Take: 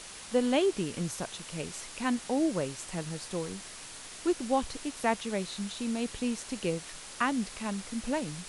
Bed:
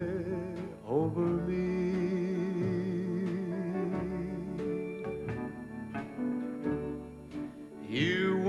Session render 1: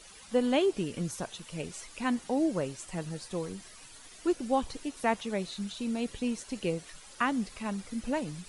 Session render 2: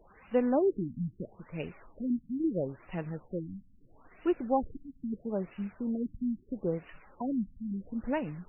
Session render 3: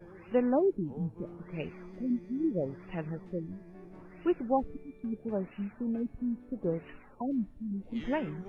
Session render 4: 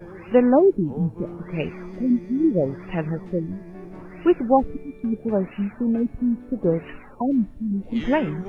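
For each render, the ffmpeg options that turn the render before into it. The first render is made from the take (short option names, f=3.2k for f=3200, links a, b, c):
-af "afftdn=nr=11:nf=-46"
-af "afftfilt=real='re*lt(b*sr/1024,260*pow(3000/260,0.5+0.5*sin(2*PI*0.76*pts/sr)))':imag='im*lt(b*sr/1024,260*pow(3000/260,0.5+0.5*sin(2*PI*0.76*pts/sr)))':win_size=1024:overlap=0.75"
-filter_complex "[1:a]volume=-17dB[a];[0:a][a]amix=inputs=2:normalize=0"
-af "volume=11dB"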